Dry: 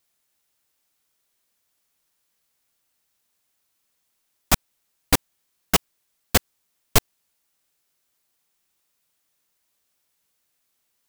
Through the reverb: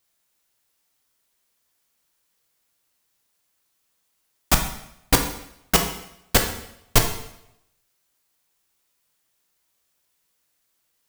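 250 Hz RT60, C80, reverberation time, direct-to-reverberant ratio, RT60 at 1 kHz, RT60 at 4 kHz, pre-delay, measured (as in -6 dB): 0.75 s, 10.0 dB, 0.80 s, 3.0 dB, 0.75 s, 0.75 s, 4 ms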